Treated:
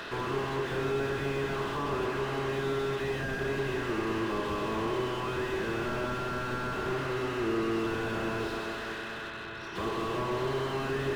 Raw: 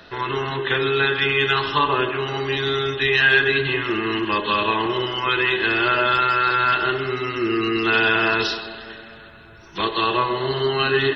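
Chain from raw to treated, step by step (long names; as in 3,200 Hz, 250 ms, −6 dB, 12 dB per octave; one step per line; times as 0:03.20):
compressor on every frequency bin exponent 0.6
mains-hum notches 50/100/150/200/250/300/350/400 Hz
slew-rate limiting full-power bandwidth 69 Hz
level −8.5 dB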